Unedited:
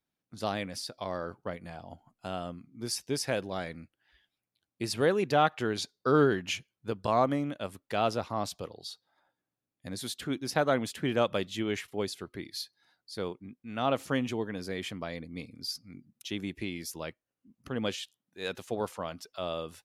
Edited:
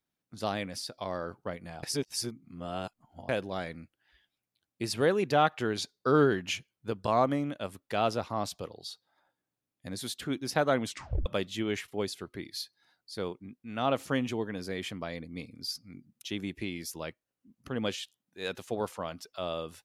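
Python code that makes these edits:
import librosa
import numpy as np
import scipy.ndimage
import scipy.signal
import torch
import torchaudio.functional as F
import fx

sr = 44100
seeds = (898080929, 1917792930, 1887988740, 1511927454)

y = fx.edit(x, sr, fx.reverse_span(start_s=1.83, length_s=1.46),
    fx.tape_stop(start_s=10.85, length_s=0.41), tone=tone)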